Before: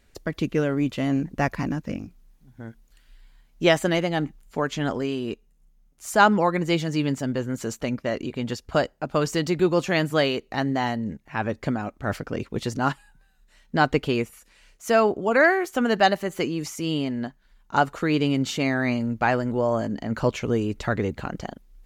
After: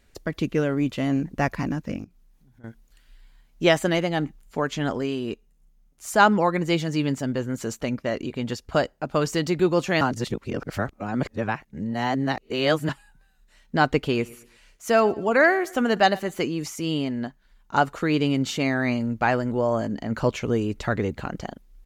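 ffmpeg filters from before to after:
-filter_complex "[0:a]asettb=1/sr,asplit=3[a][b][c];[a]atrim=end=2.044[d];[b]atrim=start=2.04:end=2.64,asetpts=PTS-STARTPTS,afade=t=in:d=0.004:c=qsin,afade=t=out:st=0.596:d=0.004:c=qsin,acompressor=threshold=-55dB:ratio=2.5:attack=3.2:release=140:knee=1:detection=peak[e];[c]atrim=start=2.636[f];[d][e]acrossfade=d=0.004:c1=hsin:c2=qsin[g];[g][f]acrossfade=d=0.004:c1=qsin:c2=hsin,asplit=3[h][i][j];[h]afade=t=out:st=14.09:d=0.02[k];[i]aecho=1:1:114|228|342:0.0841|0.0303|0.0109,afade=t=in:st=14.09:d=0.02,afade=t=out:st=16.34:d=0.02[l];[j]afade=t=in:st=16.34:d=0.02[m];[k][l][m]amix=inputs=3:normalize=0,asplit=3[n][o][p];[n]atrim=end=10.012[q];[o]atrim=start=10.008:end=12.892,asetpts=PTS-STARTPTS,areverse[r];[p]atrim=start=12.888[s];[q][r]acrossfade=d=0.004:c1=hsin:c2=hsin[t];[t][s]acrossfade=d=0.004:c1=hsin:c2=hsin"

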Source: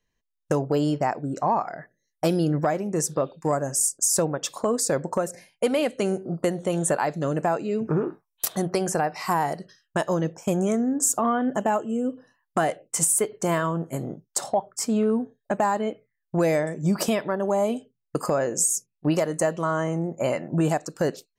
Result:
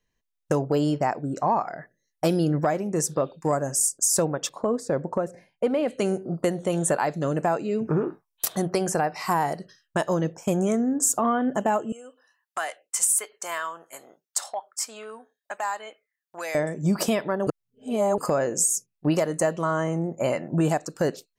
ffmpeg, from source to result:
-filter_complex "[0:a]asettb=1/sr,asplit=3[a][b][c];[a]atrim=end=4.494[d];[b]atrim=start=4.49:end=5.88,asetpts=PTS-STARTPTS,afade=t=in:d=0.004:c=qsin,afade=t=out:st=1.386:d=0.004:c=qsin,lowpass=f=1.1k:p=1[e];[c]atrim=start=5.876[f];[d][e]acrossfade=d=0.004:c1=hsin:c2=qsin[g];[g][f]acrossfade=d=0.004:c1=qsin:c2=hsin,asettb=1/sr,asplit=3[h][i][j];[h]atrim=end=11.924[k];[i]atrim=start=11.92:end=16.55,asetpts=PTS-STARTPTS,afade=t=in:d=0.004:c=qsin,afade=t=out:st=4.626:d=0.004:c=qsin,highpass=1.1k[l];[j]atrim=start=16.546[m];[k][l]acrossfade=d=0.004:c1=hsin:c2=qsin[n];[n][m]acrossfade=d=0.004:c1=qsin:c2=hsin,asplit=3[o][p][q];[o]atrim=end=17.472[r];[p]atrim=start=17.468:end=18.182,asetpts=PTS-STARTPTS,areverse[s];[q]atrim=start=18.178[t];[r][s]acrossfade=d=0.004:c1=hsin:c2=hsin[u];[u][t]acrossfade=d=0.004:c1=hsin:c2=hsin"

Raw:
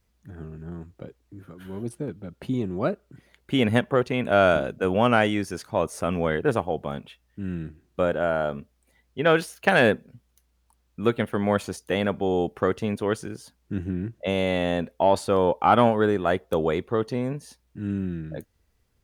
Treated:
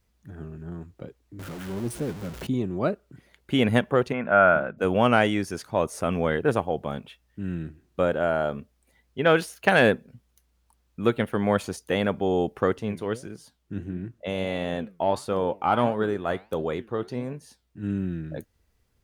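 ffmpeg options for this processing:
-filter_complex "[0:a]asettb=1/sr,asplit=3[a][b][c];[a]atrim=end=1.394[d];[b]atrim=start=1.39:end=2.47,asetpts=PTS-STARTPTS,afade=t=in:d=0.004:c=qsin,afade=t=out:st=1.076:d=0.004:c=qsin,aeval=exprs='val(0)+0.5*0.0188*sgn(val(0))':c=same[e];[c]atrim=start=2.466[f];[d][e]acrossfade=d=0.004:c1=hsin:c2=qsin[g];[g][f]acrossfade=d=0.004:c1=qsin:c2=hsin,asplit=3[h][i][j];[h]afade=t=out:st=4.12:d=0.02[k];[i]highpass=110,equalizer=f=120:t=q:w=4:g=-7,equalizer=f=290:t=q:w=4:g=-7,equalizer=f=420:t=q:w=4:g=-7,equalizer=f=1.4k:t=q:w=4:g=6,lowpass=f=2.2k:w=0.5412,lowpass=f=2.2k:w=1.3066,afade=t=in:st=4.12:d=0.02,afade=t=out:st=4.77:d=0.02[l];[j]afade=t=in:st=4.77:d=0.02[m];[k][l][m]amix=inputs=3:normalize=0,asplit=3[n][o][p];[n]afade=t=out:st=12.76:d=0.02[q];[o]flanger=delay=4.4:depth=8:regen=82:speed=1.5:shape=triangular,afade=t=in:st=12.76:d=0.02,afade=t=out:st=17.82:d=0.02[r];[p]afade=t=in:st=17.82:d=0.02[s];[q][r][s]amix=inputs=3:normalize=0"

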